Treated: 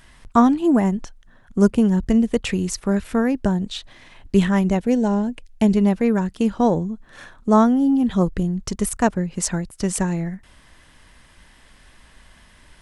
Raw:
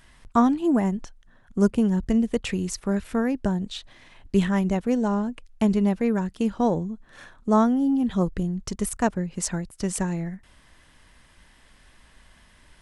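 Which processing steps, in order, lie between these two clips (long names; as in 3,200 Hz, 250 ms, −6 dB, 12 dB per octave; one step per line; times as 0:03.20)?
0:04.78–0:05.77: parametric band 1,200 Hz −12.5 dB 0.35 octaves
level +4.5 dB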